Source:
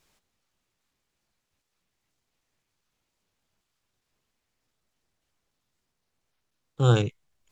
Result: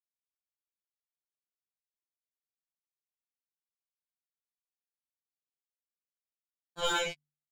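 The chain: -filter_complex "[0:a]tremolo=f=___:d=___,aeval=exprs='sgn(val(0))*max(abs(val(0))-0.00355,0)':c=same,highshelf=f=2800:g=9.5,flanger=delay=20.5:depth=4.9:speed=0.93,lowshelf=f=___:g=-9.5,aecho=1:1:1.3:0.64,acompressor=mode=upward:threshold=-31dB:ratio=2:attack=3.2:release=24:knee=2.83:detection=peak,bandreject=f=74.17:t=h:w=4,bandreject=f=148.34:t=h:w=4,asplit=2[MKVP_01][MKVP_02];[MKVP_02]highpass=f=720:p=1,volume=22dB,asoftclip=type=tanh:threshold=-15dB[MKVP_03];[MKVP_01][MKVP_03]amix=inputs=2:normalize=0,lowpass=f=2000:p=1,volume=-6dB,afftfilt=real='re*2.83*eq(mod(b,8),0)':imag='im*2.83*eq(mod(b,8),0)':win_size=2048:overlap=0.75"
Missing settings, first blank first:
120, 0.947, 490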